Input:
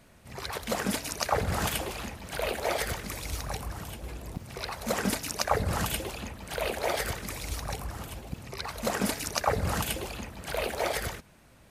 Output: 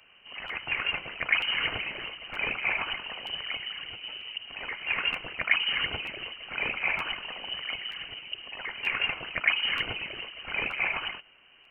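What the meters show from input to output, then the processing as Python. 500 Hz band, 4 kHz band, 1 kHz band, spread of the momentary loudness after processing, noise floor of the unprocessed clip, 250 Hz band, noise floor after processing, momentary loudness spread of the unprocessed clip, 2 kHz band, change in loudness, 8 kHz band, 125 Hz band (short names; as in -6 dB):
-11.5 dB, +6.5 dB, -5.5 dB, 12 LU, -57 dBFS, -12.5 dB, -57 dBFS, 12 LU, +8.0 dB, +2.5 dB, under -30 dB, -14.5 dB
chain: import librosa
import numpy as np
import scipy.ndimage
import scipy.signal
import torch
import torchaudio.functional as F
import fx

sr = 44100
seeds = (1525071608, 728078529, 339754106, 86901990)

y = scipy.signal.sosfilt(scipy.signal.butter(2, 59.0, 'highpass', fs=sr, output='sos'), x)
y = fx.dynamic_eq(y, sr, hz=880.0, q=6.0, threshold_db=-50.0, ratio=4.0, max_db=6)
y = fx.freq_invert(y, sr, carrier_hz=3000)
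y = fx.buffer_crackle(y, sr, first_s=0.47, period_s=0.93, block=512, kind='repeat')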